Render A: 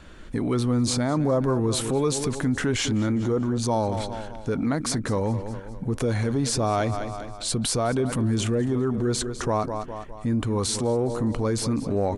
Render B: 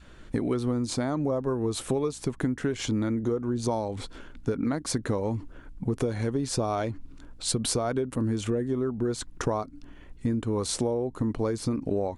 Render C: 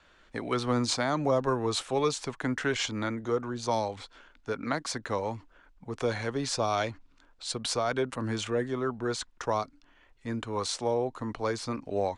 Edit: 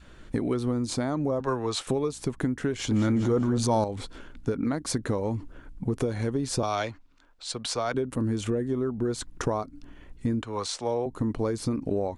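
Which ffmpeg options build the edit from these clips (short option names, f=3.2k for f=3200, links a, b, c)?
-filter_complex "[2:a]asplit=3[a][b][c];[1:a]asplit=5[d][e][f][g][h];[d]atrim=end=1.402[i];[a]atrim=start=1.398:end=1.872[j];[e]atrim=start=1.868:end=2.912[k];[0:a]atrim=start=2.908:end=3.842[l];[f]atrim=start=3.838:end=6.632[m];[b]atrim=start=6.628:end=7.942[n];[g]atrim=start=7.938:end=10.422[o];[c]atrim=start=10.418:end=11.062[p];[h]atrim=start=11.058[q];[i][j]acrossfade=d=0.004:c1=hsin:c2=hsin[r];[r][k]acrossfade=d=0.004:c1=hsin:c2=hsin[s];[s][l]acrossfade=d=0.004:c1=hsin:c2=hsin[t];[t][m]acrossfade=d=0.004:c1=hsin:c2=hsin[u];[u][n]acrossfade=d=0.004:c1=hsin:c2=hsin[v];[v][o]acrossfade=d=0.004:c1=hsin:c2=hsin[w];[w][p]acrossfade=d=0.004:c1=hsin:c2=hsin[x];[x][q]acrossfade=d=0.004:c1=hsin:c2=hsin"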